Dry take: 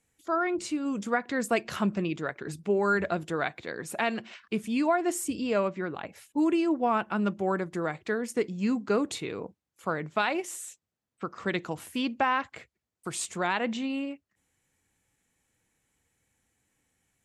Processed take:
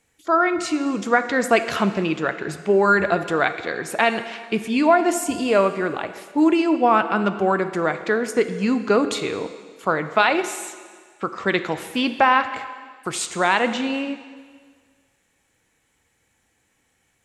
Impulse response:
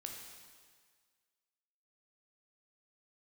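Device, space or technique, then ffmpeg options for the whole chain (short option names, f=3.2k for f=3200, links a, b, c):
filtered reverb send: -filter_complex "[0:a]asplit=2[a][b];[b]highpass=280,lowpass=6.7k[c];[1:a]atrim=start_sample=2205[d];[c][d]afir=irnorm=-1:irlink=0,volume=0.5dB[e];[a][e]amix=inputs=2:normalize=0,volume=6dB"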